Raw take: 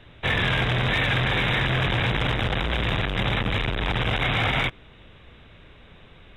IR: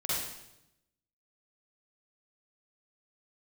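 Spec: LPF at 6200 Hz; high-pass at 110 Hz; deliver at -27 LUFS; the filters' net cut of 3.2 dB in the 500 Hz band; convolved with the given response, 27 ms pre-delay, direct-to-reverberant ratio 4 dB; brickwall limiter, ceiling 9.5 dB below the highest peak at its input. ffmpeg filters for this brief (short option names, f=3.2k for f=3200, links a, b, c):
-filter_complex "[0:a]highpass=110,lowpass=6.2k,equalizer=f=500:t=o:g=-4,alimiter=limit=-22.5dB:level=0:latency=1,asplit=2[a][b];[1:a]atrim=start_sample=2205,adelay=27[c];[b][c]afir=irnorm=-1:irlink=0,volume=-10.5dB[d];[a][d]amix=inputs=2:normalize=0,volume=2.5dB"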